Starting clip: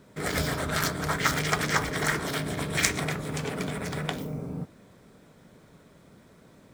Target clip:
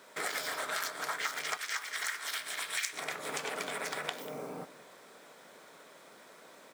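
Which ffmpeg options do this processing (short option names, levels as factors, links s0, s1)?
-af "asetnsamples=n=441:p=0,asendcmd='1.57 highpass f 1500;2.93 highpass f 590',highpass=700,acompressor=threshold=0.01:ratio=5,aecho=1:1:191:0.133,volume=2"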